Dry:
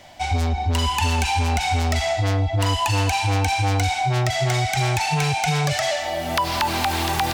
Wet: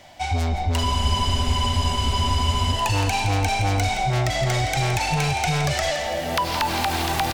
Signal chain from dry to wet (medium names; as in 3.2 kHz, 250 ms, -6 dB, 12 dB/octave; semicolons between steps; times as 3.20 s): frequency-shifting echo 168 ms, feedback 63%, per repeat -73 Hz, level -11 dB; spectral freeze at 0.87 s, 1.85 s; trim -1.5 dB